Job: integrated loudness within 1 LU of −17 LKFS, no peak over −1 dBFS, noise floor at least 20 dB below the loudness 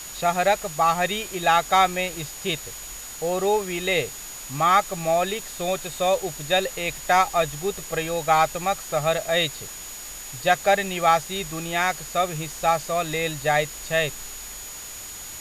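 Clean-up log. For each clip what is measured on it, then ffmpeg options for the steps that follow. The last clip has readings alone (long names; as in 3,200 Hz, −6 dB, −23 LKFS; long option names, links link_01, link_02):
interfering tone 6,800 Hz; level of the tone −38 dBFS; background noise floor −38 dBFS; target noise floor −44 dBFS; integrated loudness −23.5 LKFS; sample peak −5.5 dBFS; target loudness −17.0 LKFS
→ -af "bandreject=frequency=6800:width=30"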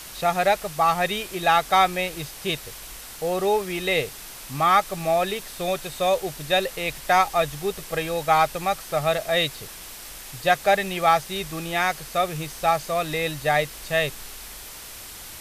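interfering tone none found; background noise floor −40 dBFS; target noise floor −44 dBFS
→ -af "afftdn=noise_reduction=6:noise_floor=-40"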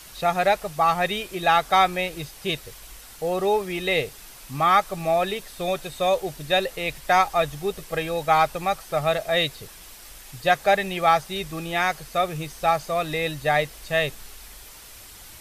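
background noise floor −45 dBFS; integrated loudness −23.5 LKFS; sample peak −5.5 dBFS; target loudness −17.0 LKFS
→ -af "volume=6.5dB,alimiter=limit=-1dB:level=0:latency=1"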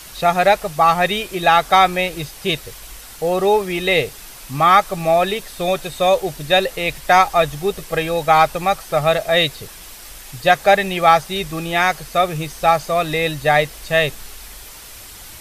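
integrated loudness −17.0 LKFS; sample peak −1.0 dBFS; background noise floor −38 dBFS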